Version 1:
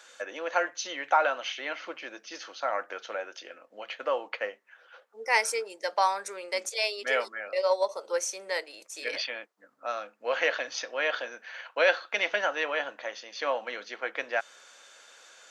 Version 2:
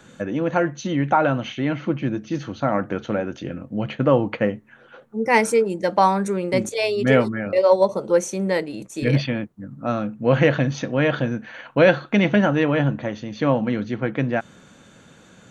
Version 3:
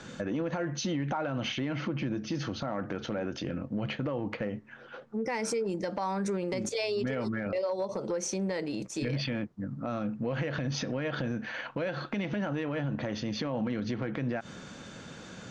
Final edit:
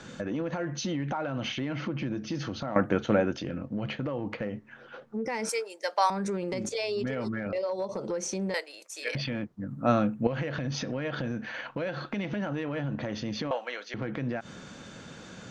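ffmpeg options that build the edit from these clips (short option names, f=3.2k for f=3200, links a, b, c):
-filter_complex "[1:a]asplit=2[a][b];[0:a]asplit=3[c][d][e];[2:a]asplit=6[f][g][h][i][j][k];[f]atrim=end=2.762[l];[a]atrim=start=2.758:end=3.332[m];[g]atrim=start=3.328:end=5.492[n];[c]atrim=start=5.488:end=6.102[o];[h]atrim=start=6.098:end=8.542[p];[d]atrim=start=8.538:end=9.152[q];[i]atrim=start=9.148:end=9.682[r];[b]atrim=start=9.678:end=10.272[s];[j]atrim=start=10.268:end=13.512[t];[e]atrim=start=13.508:end=13.942[u];[k]atrim=start=13.938[v];[l][m]acrossfade=d=0.004:c1=hsin:c2=hsin[w];[w][n]acrossfade=d=0.004:c1=hsin:c2=hsin[x];[x][o]acrossfade=d=0.004:c1=hsin:c2=hsin[y];[y][p]acrossfade=d=0.004:c1=hsin:c2=hsin[z];[z][q]acrossfade=d=0.004:c1=hsin:c2=hsin[aa];[aa][r]acrossfade=d=0.004:c1=hsin:c2=hsin[ab];[ab][s]acrossfade=d=0.004:c1=hsin:c2=hsin[ac];[ac][t]acrossfade=d=0.004:c1=hsin:c2=hsin[ad];[ad][u]acrossfade=d=0.004:c1=hsin:c2=hsin[ae];[ae][v]acrossfade=d=0.004:c1=hsin:c2=hsin"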